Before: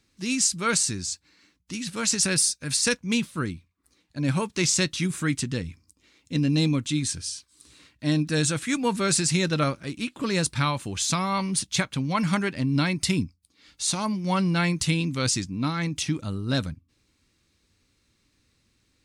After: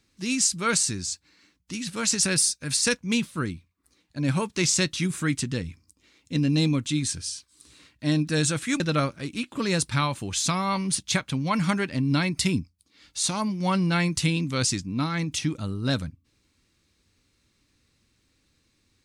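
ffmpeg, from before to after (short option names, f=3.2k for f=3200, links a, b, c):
-filter_complex "[0:a]asplit=2[a][b];[a]atrim=end=8.802[c];[b]atrim=start=9.438[d];[c][d]acrossfade=d=0.004:c1=hsin:c2=hsin"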